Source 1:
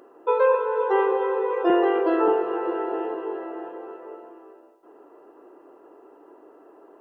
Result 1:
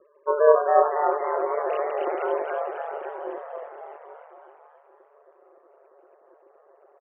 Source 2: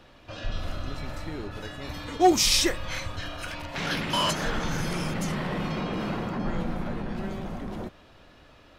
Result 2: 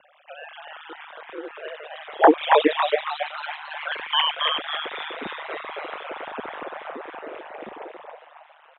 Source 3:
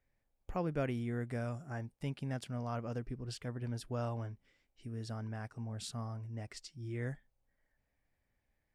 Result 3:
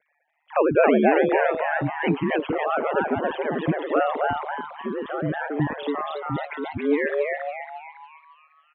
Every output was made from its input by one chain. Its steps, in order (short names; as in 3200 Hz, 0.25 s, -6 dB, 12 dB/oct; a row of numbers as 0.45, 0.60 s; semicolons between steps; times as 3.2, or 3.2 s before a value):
sine-wave speech; frequency shift +18 Hz; ring modulator 76 Hz; frequency-shifting echo 0.276 s, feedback 44%, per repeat +140 Hz, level -3 dB; match loudness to -24 LUFS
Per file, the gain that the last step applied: 0.0, +3.0, +17.5 dB